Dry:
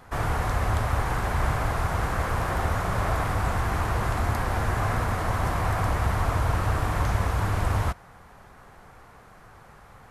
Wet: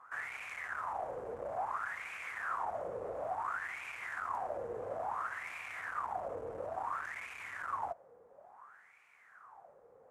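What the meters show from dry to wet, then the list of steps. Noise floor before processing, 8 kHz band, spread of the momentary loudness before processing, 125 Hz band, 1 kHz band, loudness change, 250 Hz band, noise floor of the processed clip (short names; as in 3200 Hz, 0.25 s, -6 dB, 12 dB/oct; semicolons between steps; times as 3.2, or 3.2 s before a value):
-51 dBFS, -20.0 dB, 2 LU, -35.5 dB, -10.0 dB, -13.5 dB, -24.0 dB, -63 dBFS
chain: overloaded stage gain 25 dB; resonant high shelf 5500 Hz +10 dB, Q 1.5; wah 0.58 Hz 470–2400 Hz, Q 8.6; gain +4.5 dB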